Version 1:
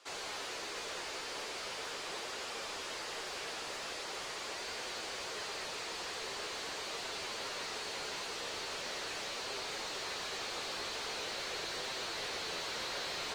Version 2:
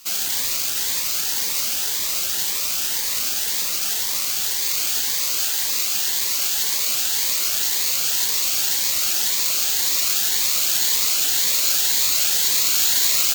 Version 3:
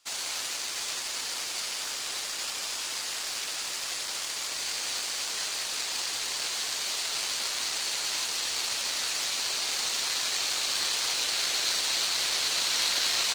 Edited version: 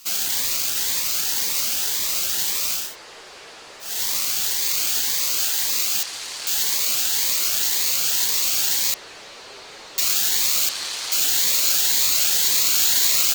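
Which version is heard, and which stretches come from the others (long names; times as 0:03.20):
2
0:02.84–0:03.91: punch in from 1, crossfade 0.24 s
0:06.03–0:06.47: punch in from 3
0:08.94–0:09.98: punch in from 1
0:10.69–0:11.12: punch in from 3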